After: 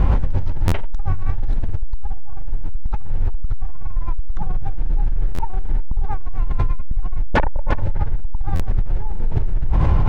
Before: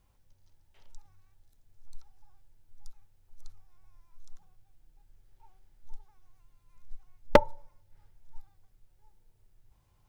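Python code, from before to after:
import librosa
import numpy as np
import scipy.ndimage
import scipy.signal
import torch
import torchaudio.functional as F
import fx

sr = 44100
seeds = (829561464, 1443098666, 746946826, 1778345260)

y = fx.fold_sine(x, sr, drive_db=19, ceiling_db=-7.5)
y = fx.low_shelf(y, sr, hz=340.0, db=9.0)
y = 10.0 ** (-18.5 / 20.0) * np.tanh(y / 10.0 ** (-18.5 / 20.0))
y = scipy.signal.sosfilt(scipy.signal.butter(2, 1800.0, 'lowpass', fs=sr, output='sos'), y)
y = fx.peak_eq(y, sr, hz=110.0, db=-6.5, octaves=0.49)
y = y + 10.0 ** (-23.0 / 20.0) * np.pad(y, (int(351 * sr / 1000.0), 0))[:len(y)]
y = fx.buffer_glitch(y, sr, at_s=(0.67, 5.34, 8.55), block=512, repeats=3)
y = fx.env_flatten(y, sr, amount_pct=100)
y = F.gain(torch.from_numpy(y), 5.0).numpy()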